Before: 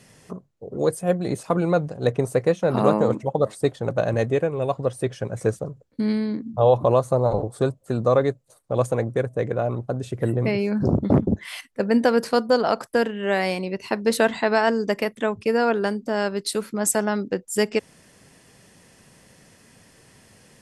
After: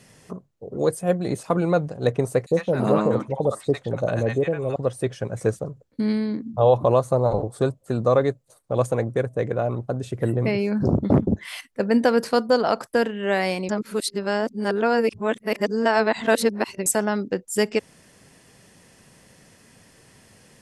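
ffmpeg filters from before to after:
-filter_complex "[0:a]asettb=1/sr,asplit=3[a][b][c];[a]atrim=end=2.464[d];[b]atrim=start=2.46:end=4.76,asetpts=PTS-STARTPTS,afade=t=in:d=0.004:c=qsin,afade=t=out:st=2.296:d=0.004:c=qsin,acrossover=split=810|4700[e][f][g];[e]adelay=50[h];[f]adelay=100[i];[h][i][g]amix=inputs=3:normalize=0,atrim=end_sample=101430[j];[c]atrim=start=4.756[k];[d][j]acrossfade=d=0.004:c1=hsin:c2=qsin[l];[l][k]acrossfade=d=0.004:c1=qsin:c2=hsin,asplit=3[m][n][o];[m]atrim=end=13.692[p];[n]atrim=start=13.688:end=16.862,asetpts=PTS-STARTPTS,areverse[q];[o]atrim=start=16.858[r];[p][q]acrossfade=d=0.004:c1=hsin:c2=hsin[s];[s][r]acrossfade=d=0.004:c1=hsin:c2=hsin"

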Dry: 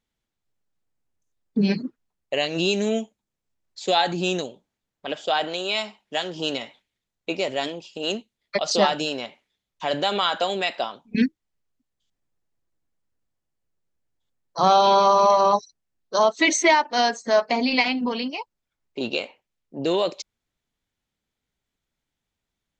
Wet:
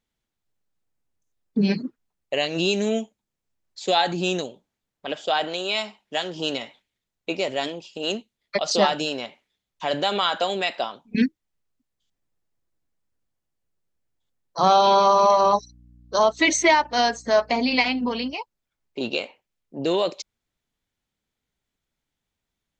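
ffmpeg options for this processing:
-filter_complex "[0:a]asettb=1/sr,asplit=3[a][b][c];[a]atrim=end=15.414[d];[b]atrim=start=15.41:end=18.34,asetpts=PTS-STARTPTS,afade=t=in:d=0.004:c=qsin,afade=t=out:st=2.926:d=0.004:c=qsin,aeval=exprs='val(0)+0.00316*(sin(2*PI*60*n/s)+sin(2*PI*2*60*n/s)/2+sin(2*PI*3*60*n/s)/3+sin(2*PI*4*60*n/s)/4+sin(2*PI*5*60*n/s)/5)':c=same[e];[c]atrim=start=18.336[f];[d][e]acrossfade=d=0.004:c1=hsin:c2=qsin[g];[g][f]acrossfade=d=0.004:c1=qsin:c2=hsin"

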